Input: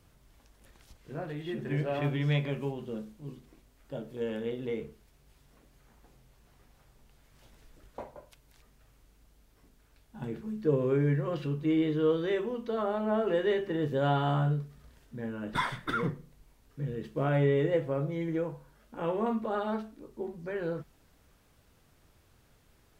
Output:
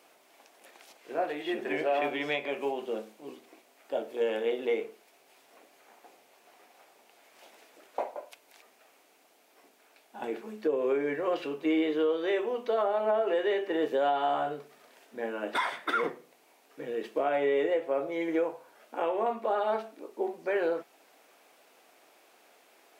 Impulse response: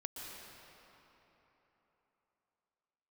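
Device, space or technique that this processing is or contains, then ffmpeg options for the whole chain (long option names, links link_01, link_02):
laptop speaker: -af "highpass=frequency=320:width=0.5412,highpass=frequency=320:width=1.3066,equalizer=frequency=720:width_type=o:width=0.55:gain=8,equalizer=frequency=2400:width_type=o:width=0.5:gain=5.5,alimiter=level_in=0.5dB:limit=-24dB:level=0:latency=1:release=425,volume=-0.5dB,volume=5.5dB"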